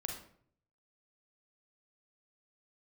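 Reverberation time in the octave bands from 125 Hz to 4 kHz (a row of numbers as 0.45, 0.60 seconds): 0.90, 0.70, 0.65, 0.55, 0.50, 0.40 seconds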